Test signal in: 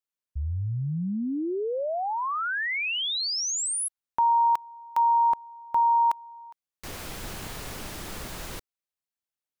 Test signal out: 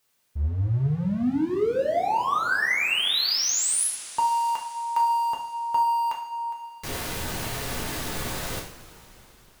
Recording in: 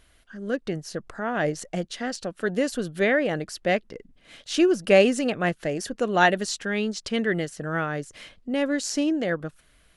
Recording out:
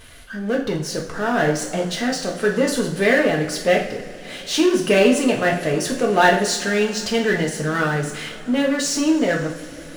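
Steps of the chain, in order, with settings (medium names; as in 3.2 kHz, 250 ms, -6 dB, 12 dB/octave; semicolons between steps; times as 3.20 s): power-law waveshaper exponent 0.7; two-slope reverb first 0.47 s, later 4.8 s, from -21 dB, DRR -1 dB; trim -2 dB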